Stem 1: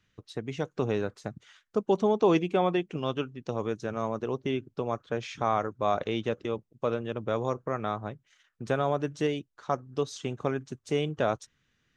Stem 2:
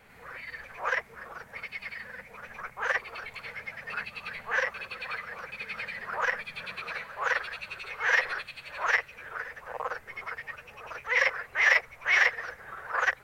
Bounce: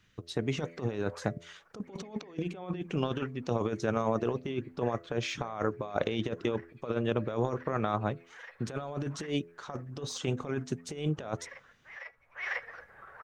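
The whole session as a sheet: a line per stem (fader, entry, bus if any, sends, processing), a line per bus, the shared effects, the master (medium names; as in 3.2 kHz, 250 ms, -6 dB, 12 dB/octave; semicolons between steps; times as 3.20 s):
+1.0 dB, 0.00 s, no send, compressor with a negative ratio -32 dBFS, ratio -0.5; de-hum 84.55 Hz, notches 8; de-esser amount 90%
-2.5 dB, 0.30 s, no send, treble shelf 3.1 kHz -10 dB; feedback comb 280 Hz, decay 0.22 s, harmonics all, mix 50%; auto duck -15 dB, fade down 1.60 s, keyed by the first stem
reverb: none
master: none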